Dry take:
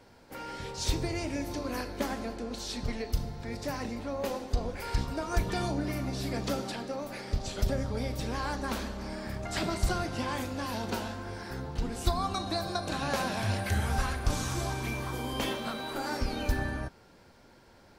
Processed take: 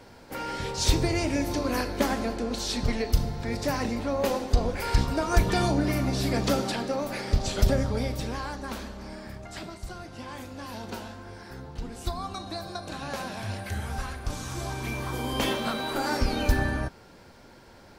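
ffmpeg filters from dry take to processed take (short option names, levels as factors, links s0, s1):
-af "volume=15.8,afade=t=out:st=7.69:d=0.82:silence=0.354813,afade=t=out:st=9.15:d=0.66:silence=0.354813,afade=t=in:st=9.81:d=0.97:silence=0.421697,afade=t=in:st=14.41:d=1.2:silence=0.334965"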